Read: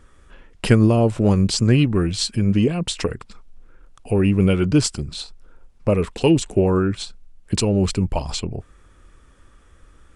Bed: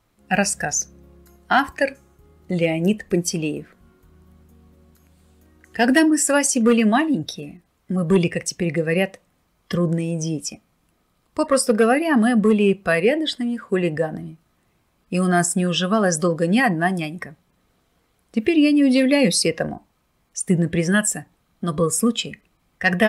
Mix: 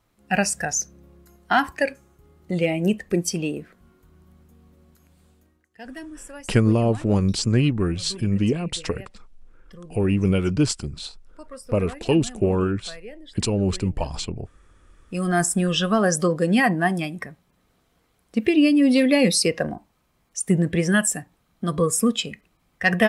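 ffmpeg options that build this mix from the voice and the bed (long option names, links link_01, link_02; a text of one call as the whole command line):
ffmpeg -i stem1.wav -i stem2.wav -filter_complex "[0:a]adelay=5850,volume=-3.5dB[link_01];[1:a]volume=19.5dB,afade=type=out:start_time=5.26:duration=0.43:silence=0.0944061,afade=type=in:start_time=14.84:duration=0.66:silence=0.0841395[link_02];[link_01][link_02]amix=inputs=2:normalize=0" out.wav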